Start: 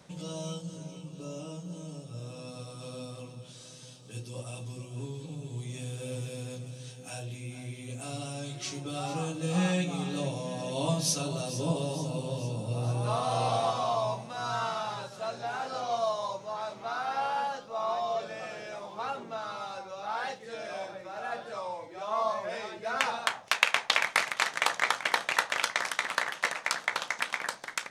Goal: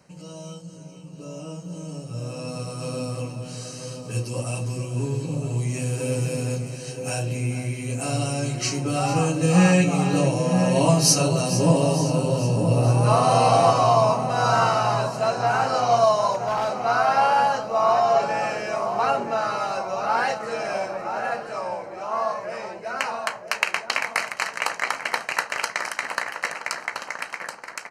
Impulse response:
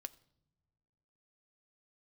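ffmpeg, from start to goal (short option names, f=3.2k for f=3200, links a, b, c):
-filter_complex "[0:a]asuperstop=centerf=3500:order=4:qfactor=4.1,dynaudnorm=f=360:g=11:m=13dB,asplit=2[a][b];[b]adelay=973,lowpass=f=1.2k:p=1,volume=-7dB,asplit=2[c][d];[d]adelay=973,lowpass=f=1.2k:p=1,volume=0.5,asplit=2[e][f];[f]adelay=973,lowpass=f=1.2k:p=1,volume=0.5,asplit=2[g][h];[h]adelay=973,lowpass=f=1.2k:p=1,volume=0.5,asplit=2[i][j];[j]adelay=973,lowpass=f=1.2k:p=1,volume=0.5,asplit=2[k][l];[l]adelay=973,lowpass=f=1.2k:p=1,volume=0.5[m];[c][e][g][i][k][m]amix=inputs=6:normalize=0[n];[a][n]amix=inputs=2:normalize=0,asettb=1/sr,asplit=3[o][p][q];[o]atrim=end=16.324[r];[p]atrim=start=16.32:end=16.74,asetpts=PTS-STARTPTS,afade=t=in:d=0.004:c=qsin,afade=t=out:st=0.416:d=0.004:c=qsin,volume=18dB,asoftclip=hard,volume=-18dB[s];[q]atrim=start=16.736[t];[r][s]acrossfade=d=0.004:c1=hsin:c2=qsin[u];[u][t]acrossfade=d=0.004:c1=qsin:c2=hsin,volume=-1dB"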